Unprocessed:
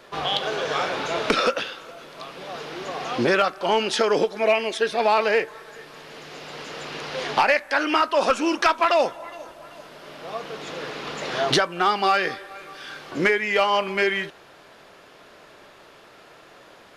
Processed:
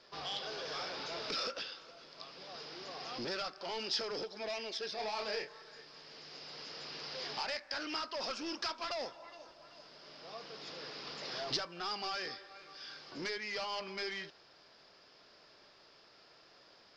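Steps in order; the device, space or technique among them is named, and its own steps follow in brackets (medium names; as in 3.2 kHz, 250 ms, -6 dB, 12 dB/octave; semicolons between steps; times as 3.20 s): overdriven synthesiser ladder filter (saturation -21 dBFS, distortion -9 dB; four-pole ladder low-pass 5.3 kHz, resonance 80%); 4.95–5.81 s: doubling 28 ms -4.5 dB; trim -3 dB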